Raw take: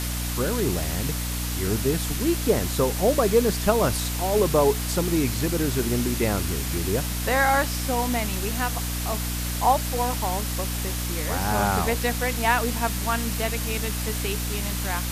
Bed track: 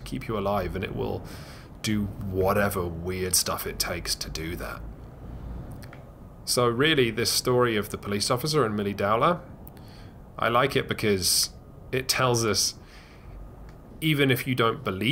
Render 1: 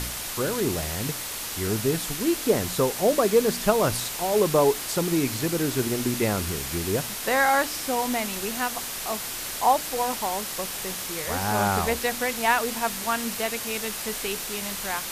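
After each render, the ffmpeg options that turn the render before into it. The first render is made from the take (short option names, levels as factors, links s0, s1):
-af "bandreject=f=60:t=h:w=4,bandreject=f=120:t=h:w=4,bandreject=f=180:t=h:w=4,bandreject=f=240:t=h:w=4,bandreject=f=300:t=h:w=4"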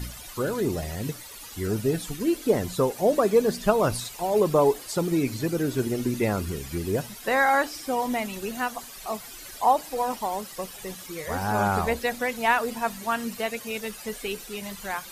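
-af "afftdn=nr=14:nf=-33"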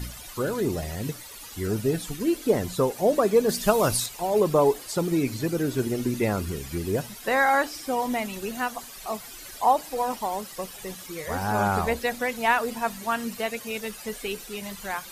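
-filter_complex "[0:a]asettb=1/sr,asplit=3[s0][s1][s2];[s0]atrim=end=3.494[s3];[s1]atrim=start=3.49:end=4.06,asetpts=PTS-STARTPTS,afade=t=in:d=0.004:c=qsin,afade=t=out:st=0.566:d=0.004:c=qsin,highshelf=f=3700:g=9[s4];[s2]atrim=start=4.056[s5];[s3][s4]acrossfade=d=0.004:c1=hsin:c2=qsin[s6];[s6][s5]acrossfade=d=0.004:c1=qsin:c2=hsin"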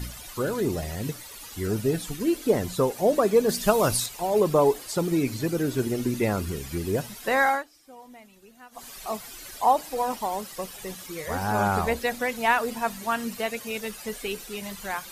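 -filter_complex "[0:a]asplit=3[s0][s1][s2];[s0]atrim=end=7.64,asetpts=PTS-STARTPTS,afade=t=out:st=7.47:d=0.17:silence=0.0944061[s3];[s1]atrim=start=7.64:end=8.71,asetpts=PTS-STARTPTS,volume=0.0944[s4];[s2]atrim=start=8.71,asetpts=PTS-STARTPTS,afade=t=in:d=0.17:silence=0.0944061[s5];[s3][s4][s5]concat=n=3:v=0:a=1"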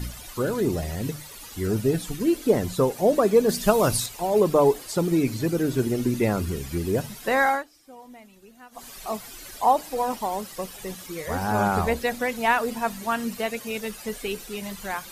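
-af "lowshelf=f=460:g=3.5,bandreject=f=50:t=h:w=6,bandreject=f=100:t=h:w=6,bandreject=f=150:t=h:w=6"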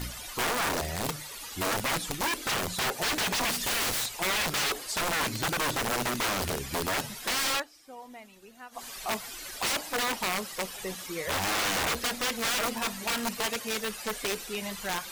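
-filter_complex "[0:a]aeval=exprs='(mod(13.3*val(0)+1,2)-1)/13.3':c=same,asplit=2[s0][s1];[s1]highpass=f=720:p=1,volume=2,asoftclip=type=tanh:threshold=0.0794[s2];[s0][s2]amix=inputs=2:normalize=0,lowpass=f=7800:p=1,volume=0.501"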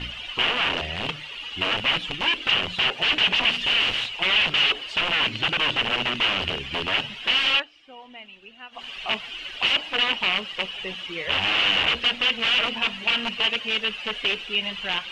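-af "lowpass=f=2900:t=q:w=8.5"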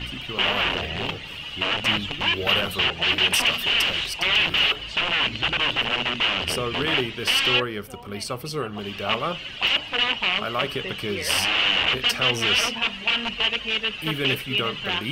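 -filter_complex "[1:a]volume=0.531[s0];[0:a][s0]amix=inputs=2:normalize=0"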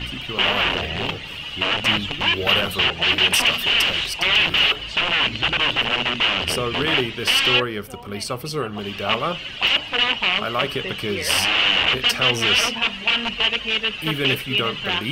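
-af "volume=1.41"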